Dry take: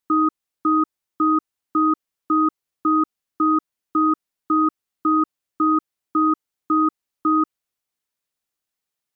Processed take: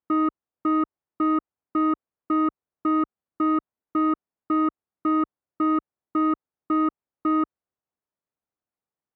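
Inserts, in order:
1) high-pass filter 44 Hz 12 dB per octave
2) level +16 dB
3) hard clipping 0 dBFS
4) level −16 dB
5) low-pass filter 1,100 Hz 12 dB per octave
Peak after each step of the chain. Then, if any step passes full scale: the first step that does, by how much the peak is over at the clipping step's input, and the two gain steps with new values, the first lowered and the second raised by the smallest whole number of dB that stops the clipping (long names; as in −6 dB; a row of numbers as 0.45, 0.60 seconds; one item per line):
−11.0, +5.0, 0.0, −16.0, −16.5 dBFS
step 2, 5.0 dB
step 2 +11 dB, step 4 −11 dB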